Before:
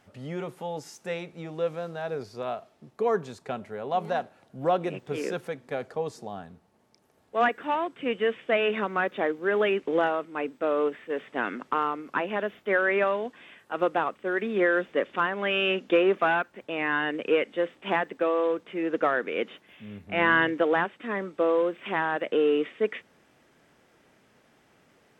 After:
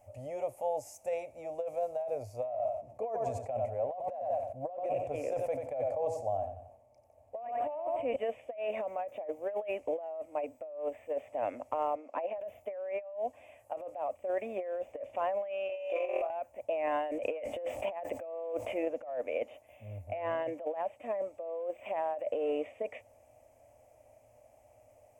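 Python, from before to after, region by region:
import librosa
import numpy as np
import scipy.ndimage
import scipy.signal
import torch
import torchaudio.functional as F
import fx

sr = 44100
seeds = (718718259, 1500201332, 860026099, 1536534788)

y = fx.chain(x, sr, fx.lowpass(hz=2900.0, slope=6),
    fx.echo_feedback(ms=91, feedback_pct=35, wet_db=-10),
    fx.sustainer(db_per_s=66.0), at=(2.46, 8.16))
y = fx.chain(y, sr, fx.highpass(hz=230.0, slope=24),
    fx.air_absorb(metres=120.0), at=(11.95, 12.38))
y = fx.chain(y, sr, fx.highpass(hz=430.0, slope=12),
    fx.room_flutter(wall_m=4.2, rt60_s=0.97),
    fx.over_compress(threshold_db=-26.0, ratio=-0.5), at=(15.69, 16.3))
y = fx.chain(y, sr, fx.hum_notches(base_hz=50, count=3),
    fx.env_flatten(amount_pct=50), at=(16.87, 18.88))
y = fx.curve_eq(y, sr, hz=(110.0, 170.0, 260.0, 400.0, 600.0, 1500.0, 2400.0, 3700.0, 6800.0, 11000.0), db=(0, -30, -14, -21, 7, -28, -12, -28, -7, -3))
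y = fx.over_compress(y, sr, threshold_db=-35.0, ratio=-1.0)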